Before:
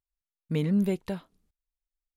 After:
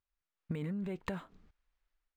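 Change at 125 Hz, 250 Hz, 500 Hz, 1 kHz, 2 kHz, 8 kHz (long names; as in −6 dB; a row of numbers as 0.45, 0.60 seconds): −10.0 dB, −11.5 dB, −10.5 dB, −1.0 dB, −3.0 dB, can't be measured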